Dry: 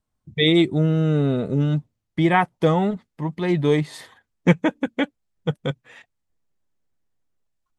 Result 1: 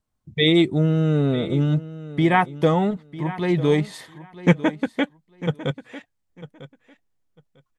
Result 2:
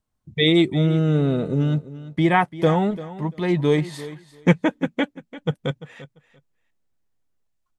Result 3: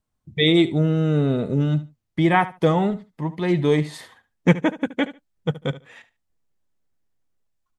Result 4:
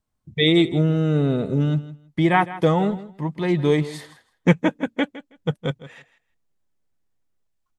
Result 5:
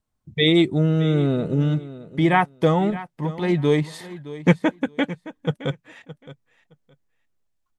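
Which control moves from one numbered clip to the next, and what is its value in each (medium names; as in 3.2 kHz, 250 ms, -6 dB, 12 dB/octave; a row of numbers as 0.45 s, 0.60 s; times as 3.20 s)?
feedback delay, time: 949 ms, 343 ms, 73 ms, 161 ms, 617 ms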